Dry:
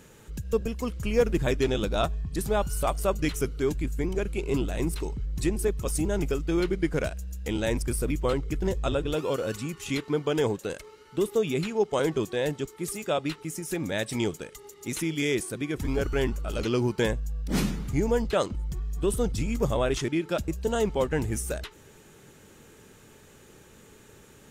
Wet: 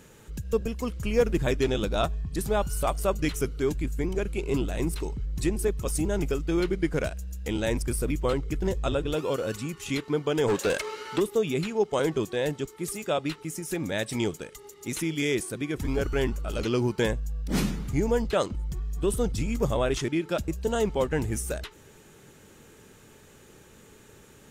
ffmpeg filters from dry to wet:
-filter_complex "[0:a]asplit=3[a][b][c];[a]afade=t=out:st=10.47:d=0.02[d];[b]asplit=2[e][f];[f]highpass=f=720:p=1,volume=24dB,asoftclip=type=tanh:threshold=-16dB[g];[e][g]amix=inputs=2:normalize=0,lowpass=f=5.2k:p=1,volume=-6dB,afade=t=in:st=10.47:d=0.02,afade=t=out:st=11.19:d=0.02[h];[c]afade=t=in:st=11.19:d=0.02[i];[d][h][i]amix=inputs=3:normalize=0"

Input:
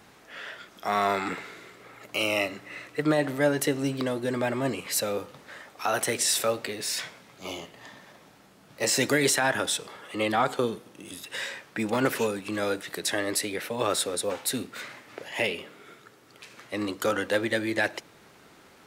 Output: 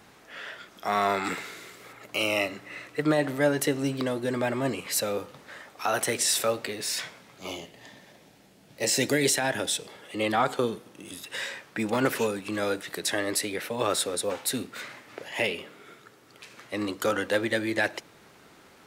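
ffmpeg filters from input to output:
-filter_complex "[0:a]asettb=1/sr,asplit=3[a][b][c];[a]atrim=end=1.244[d];[b]atrim=start=1.24:end=1.93,asetpts=PTS-STARTPTS,afade=t=in:d=0.004:c=qsin,afade=t=out:st=0.686:d=0.004:c=qsin,highshelf=f=3.8k:g=10.5[e];[c]atrim=start=1.926[f];[d][e]acrossfade=d=0.004:c1=hsin:c2=qsin[g];[g][f]acrossfade=d=0.004:c1=qsin:c2=hsin,asettb=1/sr,asplit=3[h][i][j];[h]atrim=end=7.564[k];[i]atrim=start=7.56:end=10.24,asetpts=PTS-STARTPTS,afade=t=in:d=0.004:c=qsin,afade=t=out:st=2.676:d=0.004:c=qsin,equalizer=f=1.2k:t=o:w=0.77:g=-9[l];[j]atrim=start=10.236[m];[k][l]acrossfade=d=0.004:c1=hsin:c2=qsin[n];[n][m]acrossfade=d=0.004:c1=qsin:c2=hsin"

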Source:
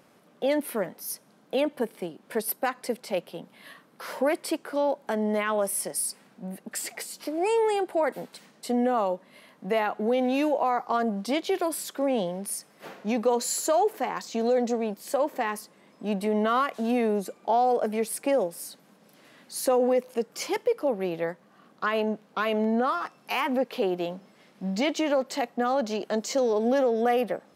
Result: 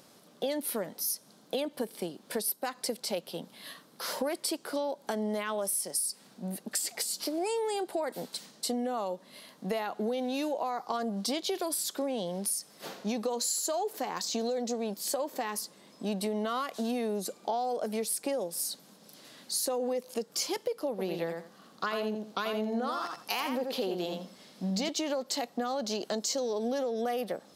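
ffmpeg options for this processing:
-filter_complex "[0:a]asettb=1/sr,asplit=3[a][b][c];[a]atrim=end=20.904[d];[b]atrim=start=20.9:end=24.89,asetpts=PTS-STARTPTS,afade=t=in:d=0.004:c=qsin,afade=t=out:st=3.986:d=0.004:c=qsin,aecho=1:1:84|168|252:0.501|0.0902|0.0162,atrim=end_sample=175959[e];[c]atrim=start=24.886[f];[d][e]acrossfade=d=0.004:c1=hsin:c2=qsin[g];[g][f]acrossfade=d=0.004:c1=qsin:c2=hsin,highshelf=f=3.1k:t=q:w=1.5:g=7.5,acompressor=threshold=-29dB:ratio=6"

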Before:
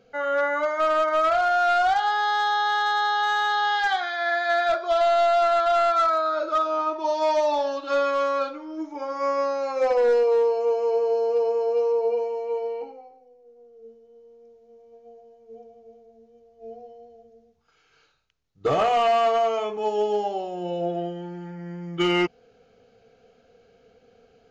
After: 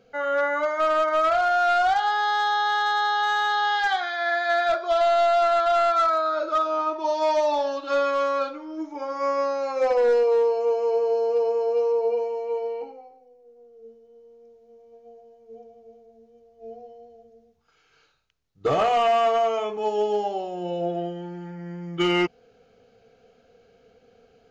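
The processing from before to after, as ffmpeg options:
-filter_complex "[0:a]asettb=1/sr,asplit=3[a][b][c];[a]atrim=end=18.984[d];[b]atrim=start=18.98:end=19.69,asetpts=PTS-STARTPTS,afade=t=in:d=0.004:c=qsin,afade=t=out:st=0.706:d=0.004:c=qsin,bandreject=f=4.3k:w=8.3[e];[c]atrim=start=19.686[f];[d][e]acrossfade=d=0.004:c1=hsin:c2=qsin[g];[g][f]acrossfade=d=0.004:c1=qsin:c2=hsin"

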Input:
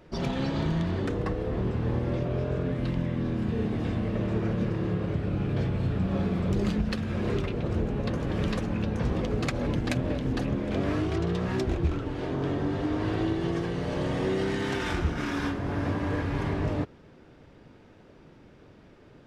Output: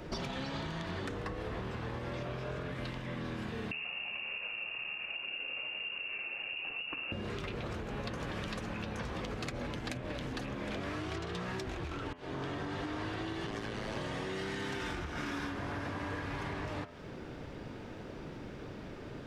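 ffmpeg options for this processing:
-filter_complex "[0:a]asettb=1/sr,asplit=3[a][b][c];[a]atrim=end=3.714[d];[b]atrim=start=3.71:end=7.12,asetpts=PTS-STARTPTS,afade=t=in:d=0.004:c=qsin,afade=t=out:st=3.406:d=0.004:c=qsin,lowpass=f=2.5k:t=q:w=0.5098,lowpass=f=2.5k:t=q:w=0.6013,lowpass=f=2.5k:t=q:w=0.9,lowpass=f=2.5k:t=q:w=2.563,afreqshift=-2900[e];[c]atrim=start=7.116[f];[d][e]acrossfade=d=0.004:c1=hsin:c2=qsin[g];[g][f]acrossfade=d=0.004:c1=qsin:c2=hsin,asettb=1/sr,asplit=3[h][i][j];[h]atrim=end=13.464[k];[i]atrim=start=13.46:end=13.97,asetpts=PTS-STARTPTS,afade=t=in:d=0.004:c=qsin,afade=t=out:st=0.506:d=0.004:c=qsin,aeval=exprs='val(0)*sin(2*PI*53*n/s)':c=same[l];[j]atrim=start=13.966[m];[k][l]acrossfade=d=0.004:c1=hsin:c2=qsin[n];[n][m]acrossfade=d=0.004:c1=qsin:c2=hsin,asplit=2[o][p];[o]atrim=end=12.13,asetpts=PTS-STARTPTS,afade=t=out:st=12.126:d=0.004:c=hsin[q];[p]atrim=start=12.13,asetpts=PTS-STARTPTS,afade=t=in:d=0.67[r];[q][r]concat=n=2:v=0:a=1,acompressor=threshold=-33dB:ratio=6,bandreject=f=85.13:t=h:w=4,bandreject=f=170.26:t=h:w=4,bandreject=f=255.39:t=h:w=4,bandreject=f=340.52:t=h:w=4,bandreject=f=425.65:t=h:w=4,bandreject=f=510.78:t=h:w=4,bandreject=f=595.91:t=h:w=4,bandreject=f=681.04:t=h:w=4,bandreject=f=766.17:t=h:w=4,bandreject=f=851.3:t=h:w=4,bandreject=f=936.43:t=h:w=4,bandreject=f=1.02156k:t=h:w=4,bandreject=f=1.10669k:t=h:w=4,bandreject=f=1.19182k:t=h:w=4,bandreject=f=1.27695k:t=h:w=4,bandreject=f=1.36208k:t=h:w=4,bandreject=f=1.44721k:t=h:w=4,bandreject=f=1.53234k:t=h:w=4,bandreject=f=1.61747k:t=h:w=4,bandreject=f=1.7026k:t=h:w=4,bandreject=f=1.78773k:t=h:w=4,bandreject=f=1.87286k:t=h:w=4,bandreject=f=1.95799k:t=h:w=4,bandreject=f=2.04312k:t=h:w=4,bandreject=f=2.12825k:t=h:w=4,bandreject=f=2.21338k:t=h:w=4,bandreject=f=2.29851k:t=h:w=4,bandreject=f=2.38364k:t=h:w=4,bandreject=f=2.46877k:t=h:w=4,bandreject=f=2.5539k:t=h:w=4,bandreject=f=2.63903k:t=h:w=4,bandreject=f=2.72416k:t=h:w=4,bandreject=f=2.80929k:t=h:w=4,bandreject=f=2.89442k:t=h:w=4,bandreject=f=2.97955k:t=h:w=4,bandreject=f=3.06468k:t=h:w=4,bandreject=f=3.14981k:t=h:w=4,bandreject=f=3.23494k:t=h:w=4,acrossover=split=390|830[s][t][u];[s]acompressor=threshold=-51dB:ratio=4[v];[t]acompressor=threshold=-58dB:ratio=4[w];[u]acompressor=threshold=-50dB:ratio=4[x];[v][w][x]amix=inputs=3:normalize=0,volume=9dB"

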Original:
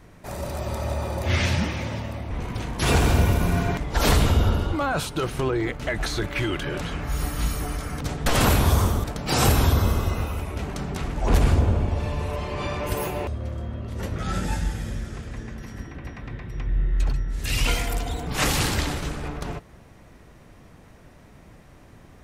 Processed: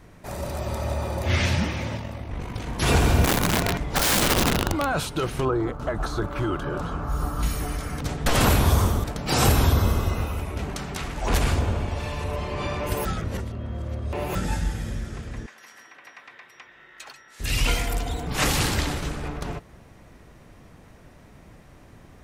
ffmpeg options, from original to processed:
-filter_complex "[0:a]asettb=1/sr,asplit=3[a][b][c];[a]atrim=end=1.974[d];[b]atrim=start=1.97:end=2.67,asetpts=PTS-STARTPTS,afade=t=in:d=0.004:c=qsin,afade=t=out:st=0.696:d=0.004:c=qsin,tremolo=f=49:d=0.519[e];[c]atrim=start=2.666[f];[d][e]acrossfade=d=0.004:c1=hsin:c2=qsin[g];[g][f]acrossfade=d=0.004:c1=qsin:c2=hsin,asettb=1/sr,asplit=3[h][i][j];[h]atrim=end=3.244[k];[i]atrim=start=3.24:end=4.9,asetpts=PTS-STARTPTS,afade=t=in:d=0.004:c=qsin,afade=t=out:st=1.656:d=0.004:c=qsin,aeval=exprs='(mod(6.31*val(0)+1,2)-1)/6.31':c=same[l];[j]atrim=start=4.896[m];[k][l]acrossfade=d=0.004:c1=hsin:c2=qsin[n];[n][m]acrossfade=d=0.004:c1=qsin:c2=hsin,asettb=1/sr,asplit=3[o][p][q];[o]atrim=end=5.454[r];[p]atrim=start=5.45:end=7.43,asetpts=PTS-STARTPTS,afade=t=in:d=0.004:c=qsin,afade=t=out:st=1.976:d=0.004:c=qsin,highshelf=f=1.6k:t=q:w=3:g=-7.5[s];[q]atrim=start=7.426[t];[r][s]acrossfade=d=0.004:c1=hsin:c2=qsin[u];[u][t]acrossfade=d=0.004:c1=qsin:c2=hsin,asettb=1/sr,asplit=3[v][w][x];[v]atrim=end=10.764[y];[w]atrim=start=10.76:end=12.24,asetpts=PTS-STARTPTS,afade=t=in:d=0.004:c=qsin,afade=t=out:st=1.476:d=0.004:c=qsin,tiltshelf=f=850:g=-4.5[z];[x]atrim=start=12.236[aa];[y][z]acrossfade=d=0.004:c1=hsin:c2=qsin[ab];[ab][aa]acrossfade=d=0.004:c1=qsin:c2=hsin,asettb=1/sr,asplit=3[ac][ad][ae];[ac]atrim=end=15.464[af];[ad]atrim=start=15.46:end=17.4,asetpts=PTS-STARTPTS,afade=t=in:d=0.004:c=qsin,afade=t=out:st=1.936:d=0.004:c=qsin,highpass=960[ag];[ae]atrim=start=17.396[ah];[af][ag]acrossfade=d=0.004:c1=hsin:c2=qsin[ai];[ai][ah]acrossfade=d=0.004:c1=qsin:c2=hsin,asplit=3[aj][ak][al];[aj]atrim=end=13.052[am];[ak]atrim=start=13.048:end=14.352,asetpts=PTS-STARTPTS,areverse[an];[al]atrim=start=14.348[ao];[am][an]acrossfade=d=0.004:c1=hsin:c2=hsin[ap];[ap][ao]acrossfade=d=0.004:c1=hsin:c2=hsin"

